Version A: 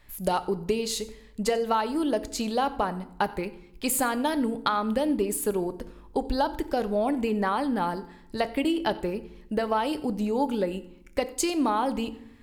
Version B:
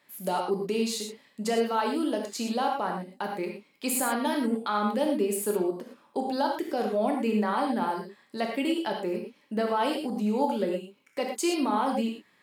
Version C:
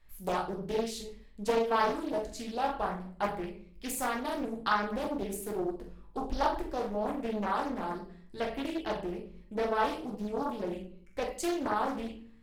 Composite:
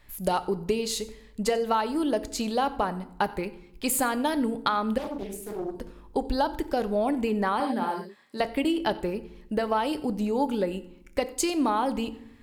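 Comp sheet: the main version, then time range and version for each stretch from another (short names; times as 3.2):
A
4.98–5.75 from C
7.6–8.4 from B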